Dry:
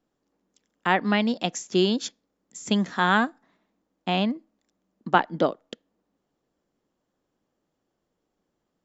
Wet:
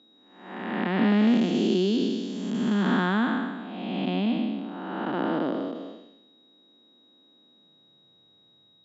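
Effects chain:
spectrum smeared in time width 484 ms
steady tone 3,800 Hz −65 dBFS
in parallel at +0.5 dB: downward compressor, threshold −43 dBFS, peak gain reduction 18.5 dB
on the sum: dynamic equaliser 810 Hz, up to −4 dB, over −43 dBFS, Q 0.76
high-pass filter sweep 250 Hz → 110 Hz, 0:07.37–0:08.23
high-frequency loss of the air 130 metres
level +4 dB

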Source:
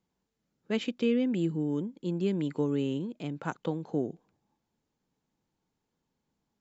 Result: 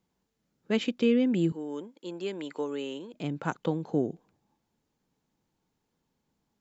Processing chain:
0:01.52–0:03.14: high-pass filter 500 Hz 12 dB per octave
level +3 dB

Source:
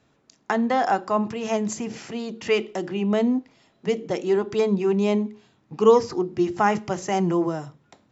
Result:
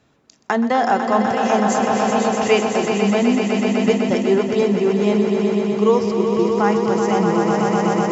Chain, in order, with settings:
echo that builds up and dies away 125 ms, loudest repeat 5, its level −8 dB
speech leveller 0.5 s
level +2.5 dB

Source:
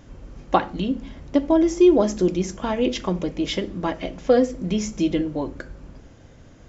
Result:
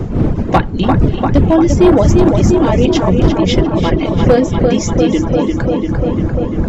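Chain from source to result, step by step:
wind on the microphone 200 Hz −23 dBFS
on a send: feedback echo with a low-pass in the loop 346 ms, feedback 80%, low-pass 3,800 Hz, level −5 dB
on the sum: hard clipping −9.5 dBFS, distortion −16 dB
reverb reduction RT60 0.71 s
in parallel at 0 dB: brickwall limiter −17 dBFS, peak gain reduction 8 dB
on the sum: feedback echo with a swinging delay time 289 ms, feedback 36%, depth 94 cents, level −17 dB
level +4 dB

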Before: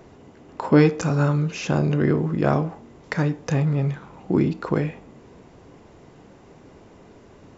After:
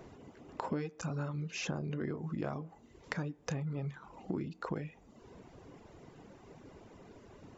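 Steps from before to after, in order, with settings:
reverb reduction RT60 0.72 s
downward compressor 6 to 1, threshold −30 dBFS, peak gain reduction 18.5 dB
level −4.5 dB

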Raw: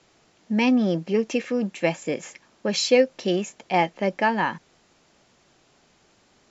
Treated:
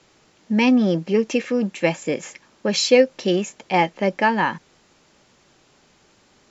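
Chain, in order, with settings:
notch filter 690 Hz, Q 12
level +3.5 dB

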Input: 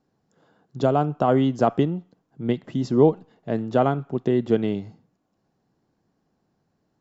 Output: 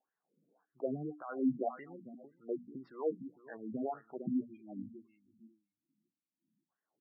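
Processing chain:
gain on a spectral selection 0:04.27–0:06.69, 360–2,100 Hz −28 dB
on a send: repeating echo 452 ms, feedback 21%, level −14 dB
on the sum: brickwall limiter −12.5 dBFS, peak gain reduction 8 dB
high-shelf EQ 5,600 Hz −9.5 dB
LFO wah 1.8 Hz 200–1,800 Hz, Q 3.6
mains-hum notches 60/120/180/240/300 Hz
gate on every frequency bin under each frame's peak −15 dB strong
level −4 dB

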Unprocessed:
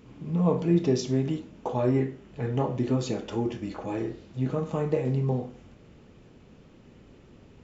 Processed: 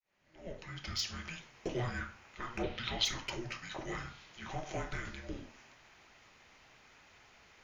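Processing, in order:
fade in at the beginning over 1.46 s
high-pass filter 1,300 Hz 12 dB per octave
soft clipping −31.5 dBFS, distortion −20 dB
0:02.63–0:03.05: low-pass with resonance 4,100 Hz, resonance Q 4
frequency shifter −480 Hz
level +6 dB

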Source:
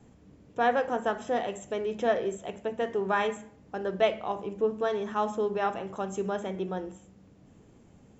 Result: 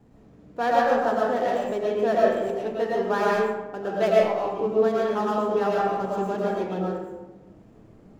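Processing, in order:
running median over 15 samples
comb and all-pass reverb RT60 1.1 s, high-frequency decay 0.5×, pre-delay 70 ms, DRR −5 dB

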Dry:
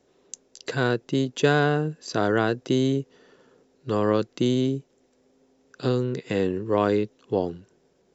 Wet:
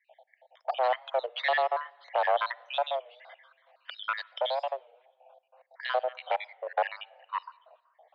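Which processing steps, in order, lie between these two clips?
time-frequency cells dropped at random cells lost 70%
0:02.88–0:04.71: spectral tilt +3 dB per octave
in parallel at +1.5 dB: downward compressor, threshold −35 dBFS, peak gain reduction 15.5 dB
on the sum: asymmetric clip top −29.5 dBFS
on a send at −23 dB: convolution reverb RT60 1.4 s, pre-delay 46 ms
on the sum: single-sideband voice off tune +260 Hz 300–3,400 Hz
low-pass that shuts in the quiet parts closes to 2,900 Hz, open at −26.5 dBFS
wow of a warped record 33 1/3 rpm, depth 160 cents
level +1.5 dB

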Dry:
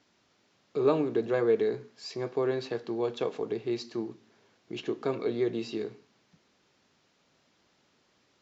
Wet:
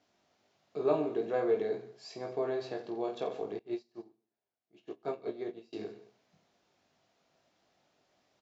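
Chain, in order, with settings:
parametric band 680 Hz +10.5 dB 0.44 octaves
on a send: reverse bouncing-ball delay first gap 20 ms, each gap 1.4×, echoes 5
0:03.59–0:05.73: on the sum: expander for the loud parts 2.5 to 1, over −39 dBFS
level −8.5 dB

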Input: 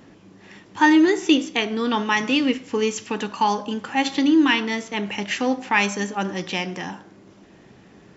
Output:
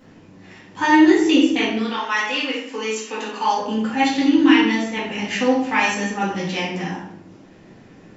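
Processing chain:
0:01.77–0:03.56: high-pass filter 840 Hz → 330 Hz 12 dB per octave
convolution reverb RT60 0.65 s, pre-delay 4 ms, DRR −7 dB
level −5.5 dB

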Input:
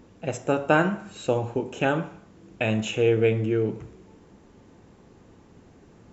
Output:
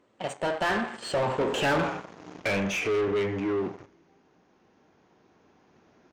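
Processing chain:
camcorder AGC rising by 5.2 dB per second
source passing by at 0:01.78, 41 m/s, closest 16 metres
leveller curve on the samples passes 2
downsampling to 22,050 Hz
mid-hump overdrive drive 26 dB, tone 2,900 Hz, clips at −10 dBFS
level −8.5 dB

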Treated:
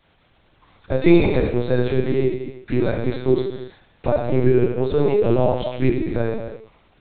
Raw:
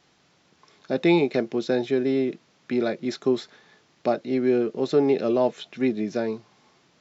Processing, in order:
reverb whose tail is shaped and stops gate 380 ms falling, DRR −0.5 dB
linear-prediction vocoder at 8 kHz pitch kept
level +1.5 dB

